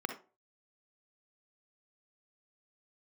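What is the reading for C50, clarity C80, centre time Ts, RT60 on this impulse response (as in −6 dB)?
7.5 dB, 15.5 dB, 14 ms, 0.35 s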